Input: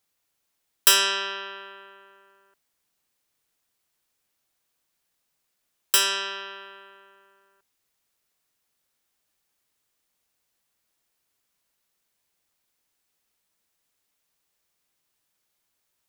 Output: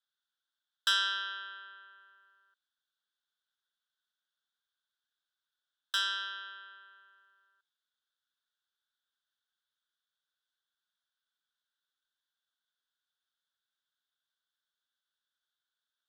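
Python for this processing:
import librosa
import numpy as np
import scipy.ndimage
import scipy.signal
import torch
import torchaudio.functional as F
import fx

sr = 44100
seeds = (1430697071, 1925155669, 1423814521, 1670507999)

y = fx.double_bandpass(x, sr, hz=2300.0, octaves=1.2)
y = F.gain(torch.from_numpy(y), -1.0).numpy()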